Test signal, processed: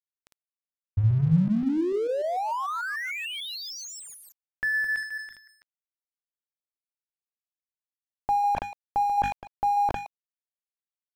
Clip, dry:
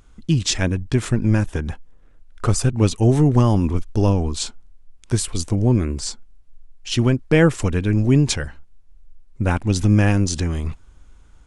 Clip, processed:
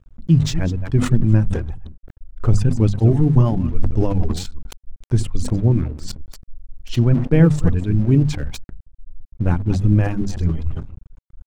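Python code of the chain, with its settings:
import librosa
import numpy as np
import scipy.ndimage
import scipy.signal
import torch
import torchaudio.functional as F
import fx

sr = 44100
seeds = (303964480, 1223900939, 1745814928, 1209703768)

y = fx.reverse_delay(x, sr, ms=148, wet_db=-8)
y = fx.dereverb_blind(y, sr, rt60_s=1.3)
y = fx.tilt_eq(y, sr, slope=-3.0)
y = fx.hum_notches(y, sr, base_hz=50, count=5)
y = fx.dynamic_eq(y, sr, hz=160.0, q=3.9, threshold_db=-26.0, ratio=4.0, max_db=5)
y = scipy.signal.sosfilt(scipy.signal.butter(2, 9900.0, 'lowpass', fs=sr, output='sos'), y)
y = np.sign(y) * np.maximum(np.abs(y) - 10.0 ** (-38.0 / 20.0), 0.0)
y = fx.sustainer(y, sr, db_per_s=89.0)
y = y * 10.0 ** (-6.0 / 20.0)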